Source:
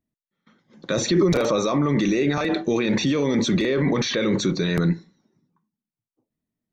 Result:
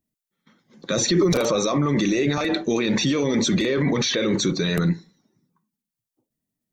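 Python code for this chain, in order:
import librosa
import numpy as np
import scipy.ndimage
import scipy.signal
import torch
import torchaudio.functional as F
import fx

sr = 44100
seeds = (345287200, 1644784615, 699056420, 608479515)

y = fx.spec_quant(x, sr, step_db=15)
y = fx.high_shelf(y, sr, hz=5100.0, db=9.5)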